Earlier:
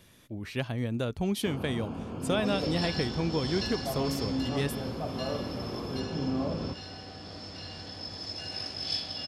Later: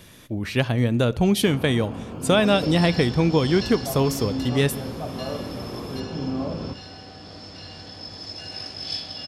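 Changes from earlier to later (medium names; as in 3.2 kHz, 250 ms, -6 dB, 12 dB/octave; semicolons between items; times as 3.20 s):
speech +7.5 dB; reverb: on, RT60 1.0 s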